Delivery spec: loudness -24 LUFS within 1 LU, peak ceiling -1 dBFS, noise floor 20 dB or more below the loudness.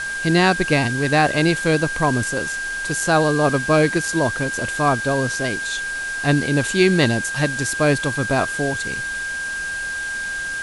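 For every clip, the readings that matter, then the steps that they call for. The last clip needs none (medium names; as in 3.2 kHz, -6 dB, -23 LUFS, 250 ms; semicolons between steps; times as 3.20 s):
steady tone 1.6 kHz; tone level -24 dBFS; noise floor -27 dBFS; noise floor target -40 dBFS; loudness -19.5 LUFS; peak level -2.5 dBFS; loudness target -24.0 LUFS
-> band-stop 1.6 kHz, Q 30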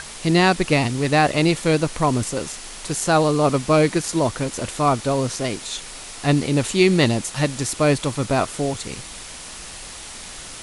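steady tone not found; noise floor -37 dBFS; noise floor target -41 dBFS
-> noise reduction 6 dB, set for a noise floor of -37 dBFS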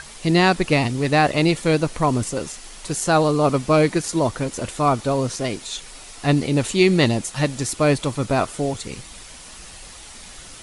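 noise floor -41 dBFS; loudness -20.5 LUFS; peak level -3.5 dBFS; loudness target -24.0 LUFS
-> trim -3.5 dB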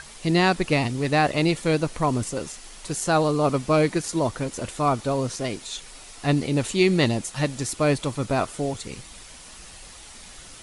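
loudness -24.0 LUFS; peak level -7.0 dBFS; noise floor -44 dBFS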